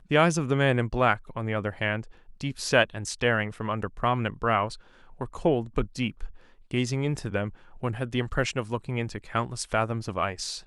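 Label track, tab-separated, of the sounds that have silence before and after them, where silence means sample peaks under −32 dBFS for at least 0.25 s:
2.410000	4.740000	sound
5.210000	6.260000	sound
6.710000	7.490000	sound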